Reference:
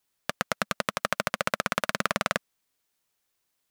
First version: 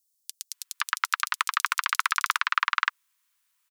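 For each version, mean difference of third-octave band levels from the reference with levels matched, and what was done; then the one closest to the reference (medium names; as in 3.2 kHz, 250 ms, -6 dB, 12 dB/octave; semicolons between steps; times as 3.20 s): 18.0 dB: steep high-pass 930 Hz 96 dB/octave; bands offset in time highs, lows 520 ms, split 4.8 kHz; trim +5 dB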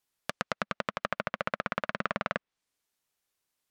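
5.5 dB: low-pass that closes with the level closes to 2.6 kHz, closed at -29 dBFS; trim -4 dB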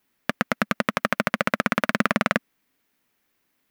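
3.5 dB: graphic EQ 250/2000/4000/8000 Hz +11/+5/-3/-7 dB; peak limiter -7.5 dBFS, peak gain reduction 5 dB; trim +6 dB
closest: third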